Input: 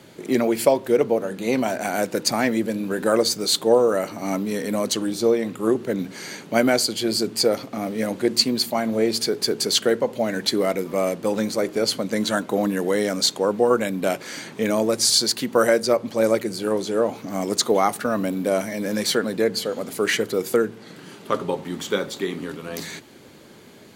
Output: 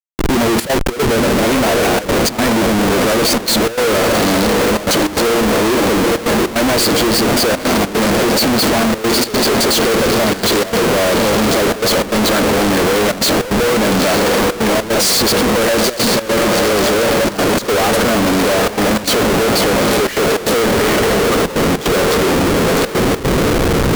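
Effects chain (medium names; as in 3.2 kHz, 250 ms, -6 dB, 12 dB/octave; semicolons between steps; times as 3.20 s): high-pass 110 Hz 12 dB/octave; on a send: echo that smears into a reverb 872 ms, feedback 68%, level -8 dB; on the sum: Schmitt trigger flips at -30.5 dBFS; trance gate "xxxxxx.xx.xxxx" 151 bpm -12 dB; trim +8.5 dB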